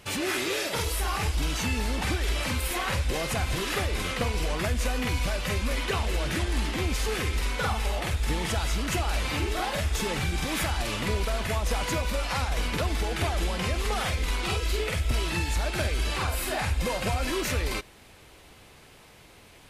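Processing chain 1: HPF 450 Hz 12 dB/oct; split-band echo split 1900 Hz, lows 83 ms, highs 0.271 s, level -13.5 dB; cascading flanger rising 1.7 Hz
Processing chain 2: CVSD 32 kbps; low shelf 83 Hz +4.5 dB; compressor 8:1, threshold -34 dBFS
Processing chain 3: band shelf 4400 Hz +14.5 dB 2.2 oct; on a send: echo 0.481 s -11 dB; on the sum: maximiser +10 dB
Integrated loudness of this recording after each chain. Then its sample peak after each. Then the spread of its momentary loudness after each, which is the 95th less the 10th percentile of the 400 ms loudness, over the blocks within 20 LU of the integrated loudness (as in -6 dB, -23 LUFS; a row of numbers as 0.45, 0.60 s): -35.0, -38.0, -10.0 LUFS; -20.0, -23.5, -1.0 dBFS; 3, 1, 2 LU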